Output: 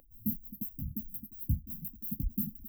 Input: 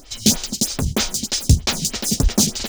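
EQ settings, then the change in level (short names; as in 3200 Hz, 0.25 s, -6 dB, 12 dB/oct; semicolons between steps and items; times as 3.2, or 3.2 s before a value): dynamic EQ 220 Hz, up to +6 dB, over -30 dBFS, Q 1.7; brick-wall FIR band-stop 320–12000 Hz; resonant low shelf 400 Hz -10.5 dB, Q 3; -6.0 dB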